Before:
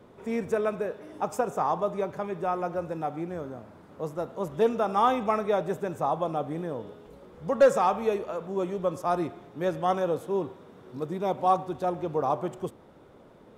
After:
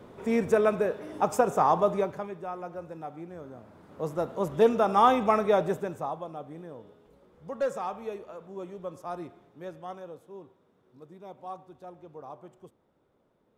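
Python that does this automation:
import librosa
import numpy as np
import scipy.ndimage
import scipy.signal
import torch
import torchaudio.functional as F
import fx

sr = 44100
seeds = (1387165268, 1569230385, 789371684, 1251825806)

y = fx.gain(x, sr, db=fx.line((1.94, 4.0), (2.41, -8.0), (3.35, -8.0), (4.16, 2.5), (5.65, 2.5), (6.26, -10.0), (9.36, -10.0), (10.21, -17.0)))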